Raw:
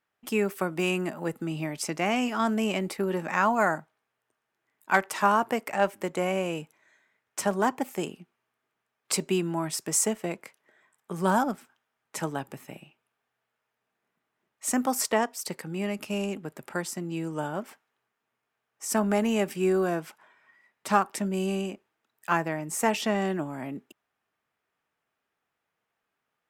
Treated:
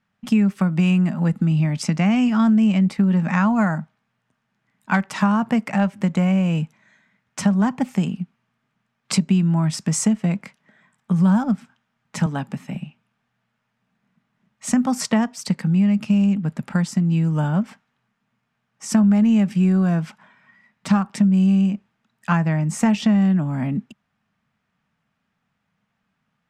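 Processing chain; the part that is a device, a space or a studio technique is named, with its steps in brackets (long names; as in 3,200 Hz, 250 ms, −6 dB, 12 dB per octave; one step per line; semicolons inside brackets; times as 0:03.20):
jukebox (low-pass filter 6,300 Hz 12 dB per octave; low shelf with overshoot 270 Hz +9.5 dB, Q 3; downward compressor 3 to 1, threshold −23 dBFS, peak gain reduction 10 dB)
0:12.26–0:12.75: high-pass filter 180 Hz
level +6.5 dB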